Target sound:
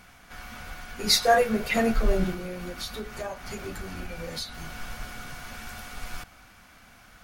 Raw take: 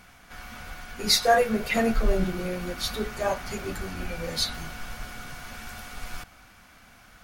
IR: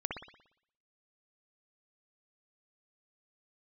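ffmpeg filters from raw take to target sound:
-filter_complex "[0:a]asettb=1/sr,asplit=3[a][b][c];[a]atrim=end=2.334[d];[b]atrim=start=2.33:end=4.76,asetpts=PTS-STARTPTS,afade=t=in:d=0.004:c=qsin,afade=t=out:st=2.426:d=0.004:c=qsin,acompressor=threshold=-32dB:ratio=6[e];[c]atrim=start=4.756[f];[d][e]acrossfade=d=0.004:c1=hsin:c2=qsin[g];[g][f]acrossfade=d=0.004:c1=qsin:c2=hsin"

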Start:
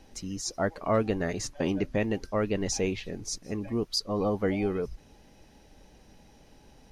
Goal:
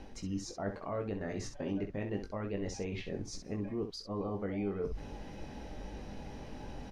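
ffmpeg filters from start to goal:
-af "alimiter=limit=-24dB:level=0:latency=1:release=273,areverse,acompressor=threshold=-48dB:ratio=4,areverse,aemphasis=mode=reproduction:type=75kf,aecho=1:1:20|65:0.531|0.376,volume=10dB"

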